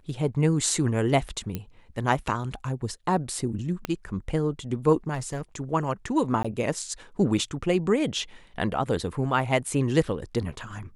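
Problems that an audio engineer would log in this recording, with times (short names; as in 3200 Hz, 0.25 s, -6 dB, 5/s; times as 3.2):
1.55 pop -16 dBFS
3.85 pop -14 dBFS
5.14–5.56 clipped -26.5 dBFS
6.43–6.45 gap 15 ms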